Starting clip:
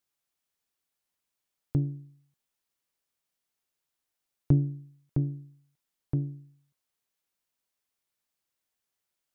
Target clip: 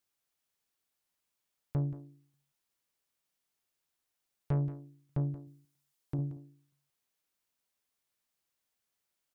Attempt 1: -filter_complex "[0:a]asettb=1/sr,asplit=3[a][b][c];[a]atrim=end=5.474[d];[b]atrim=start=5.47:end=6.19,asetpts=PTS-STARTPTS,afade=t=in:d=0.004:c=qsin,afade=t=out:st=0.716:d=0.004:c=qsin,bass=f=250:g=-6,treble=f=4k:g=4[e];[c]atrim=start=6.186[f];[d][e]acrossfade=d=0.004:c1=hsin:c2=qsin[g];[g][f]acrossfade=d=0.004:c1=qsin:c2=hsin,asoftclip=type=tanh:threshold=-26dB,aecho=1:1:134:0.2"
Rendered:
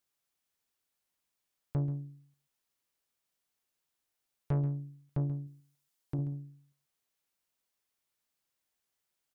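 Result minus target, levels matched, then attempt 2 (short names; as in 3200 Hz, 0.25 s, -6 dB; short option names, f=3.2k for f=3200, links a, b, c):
echo 45 ms early
-filter_complex "[0:a]asettb=1/sr,asplit=3[a][b][c];[a]atrim=end=5.474[d];[b]atrim=start=5.47:end=6.19,asetpts=PTS-STARTPTS,afade=t=in:d=0.004:c=qsin,afade=t=out:st=0.716:d=0.004:c=qsin,bass=f=250:g=-6,treble=f=4k:g=4[e];[c]atrim=start=6.186[f];[d][e]acrossfade=d=0.004:c1=hsin:c2=qsin[g];[g][f]acrossfade=d=0.004:c1=qsin:c2=hsin,asoftclip=type=tanh:threshold=-26dB,aecho=1:1:179:0.2"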